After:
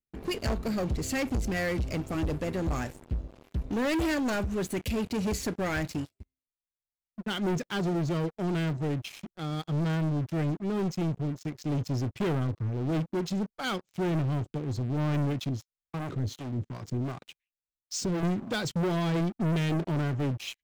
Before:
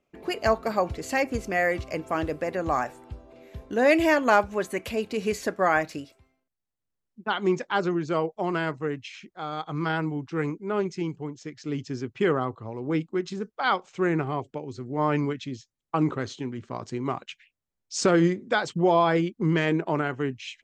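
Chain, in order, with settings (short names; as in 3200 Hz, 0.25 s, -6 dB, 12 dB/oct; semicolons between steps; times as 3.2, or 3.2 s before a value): passive tone stack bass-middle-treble 10-0-1; sample leveller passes 5; 15.49–18.23 harmonic tremolo 2.7 Hz, depth 70%, crossover 540 Hz; gain +5.5 dB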